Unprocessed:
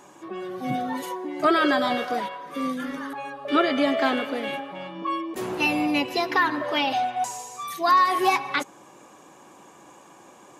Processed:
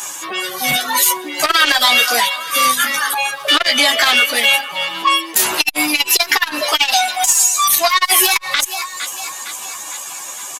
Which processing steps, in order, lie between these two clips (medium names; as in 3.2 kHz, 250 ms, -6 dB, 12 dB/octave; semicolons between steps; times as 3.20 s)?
pre-emphasis filter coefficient 0.97; reverb removal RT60 1 s; peaking EQ 340 Hz -5.5 dB 1.3 oct; in parallel at -4 dB: one-sided clip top -37 dBFS, bottom -26 dBFS; on the sum: doubling 13 ms -2 dB; thinning echo 458 ms, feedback 55%, high-pass 420 Hz, level -21.5 dB; loudness maximiser +27.5 dB; transformer saturation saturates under 1.5 kHz